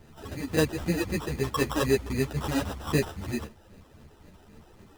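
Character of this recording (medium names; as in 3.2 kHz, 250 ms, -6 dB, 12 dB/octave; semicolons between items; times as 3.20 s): phasing stages 8, 3.8 Hz, lowest notch 140–2100 Hz; aliases and images of a low sample rate 2.2 kHz, jitter 0%; a shimmering, thickened sound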